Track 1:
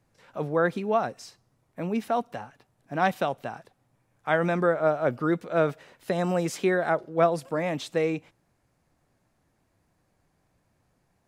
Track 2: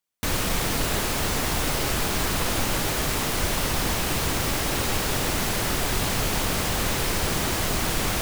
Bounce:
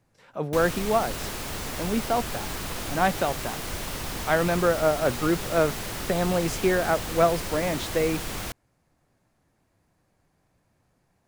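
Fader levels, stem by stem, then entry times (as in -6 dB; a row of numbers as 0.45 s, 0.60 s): +1.0 dB, -8.0 dB; 0.00 s, 0.30 s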